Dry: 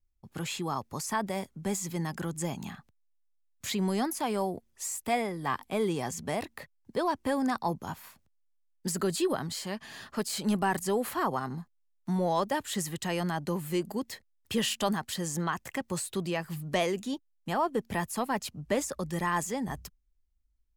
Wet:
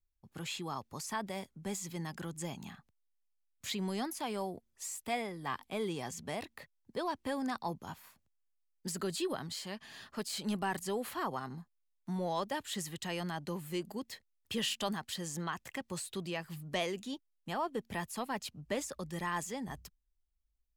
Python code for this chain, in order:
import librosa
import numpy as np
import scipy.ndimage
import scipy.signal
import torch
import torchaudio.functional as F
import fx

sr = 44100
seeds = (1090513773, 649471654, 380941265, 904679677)

y = fx.dynamic_eq(x, sr, hz=3400.0, q=0.95, threshold_db=-50.0, ratio=4.0, max_db=5)
y = y * 10.0 ** (-7.5 / 20.0)